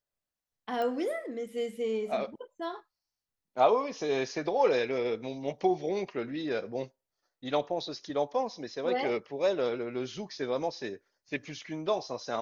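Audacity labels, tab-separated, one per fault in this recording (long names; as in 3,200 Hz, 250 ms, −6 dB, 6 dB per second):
0.820000	0.820000	click −23 dBFS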